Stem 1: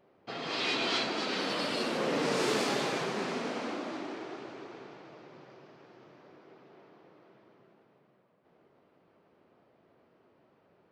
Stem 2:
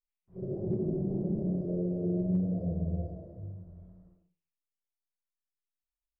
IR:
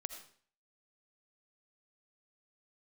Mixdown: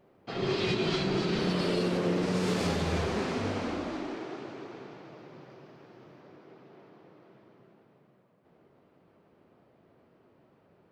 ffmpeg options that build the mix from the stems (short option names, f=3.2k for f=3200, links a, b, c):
-filter_complex "[0:a]lowshelf=f=240:g=8,volume=0.5dB[a];[1:a]equalizer=f=420:t=o:w=0.32:g=9,volume=2.5dB[b];[a][b]amix=inputs=2:normalize=0,alimiter=limit=-19.5dB:level=0:latency=1:release=150"